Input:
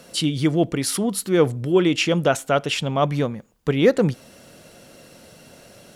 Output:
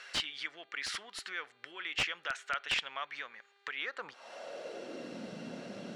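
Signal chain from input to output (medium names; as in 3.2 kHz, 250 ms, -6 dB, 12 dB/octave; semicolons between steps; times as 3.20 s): compression 8:1, threshold -28 dBFS, peak gain reduction 17.5 dB; high-pass sweep 1.7 kHz -> 210 Hz, 3.77–5.21 s; integer overflow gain 20.5 dB; mains buzz 400 Hz, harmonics 11, -70 dBFS -1 dB/octave; distance through air 130 m; trim +1.5 dB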